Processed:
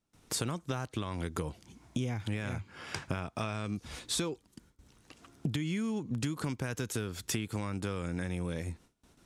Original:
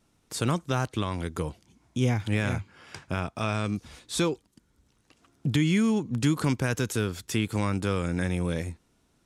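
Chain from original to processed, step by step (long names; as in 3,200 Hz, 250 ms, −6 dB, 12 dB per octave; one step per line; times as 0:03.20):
downward compressor 12 to 1, threshold −36 dBFS, peak gain reduction 17.5 dB
noise gate with hold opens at −57 dBFS
level +5.5 dB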